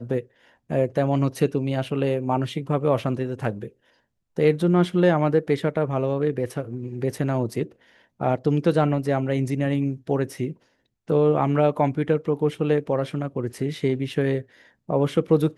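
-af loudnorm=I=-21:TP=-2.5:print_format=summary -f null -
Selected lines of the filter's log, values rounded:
Input Integrated:    -23.9 LUFS
Input True Peak:      -6.6 dBTP
Input LRA:             1.9 LU
Input Threshold:     -34.3 LUFS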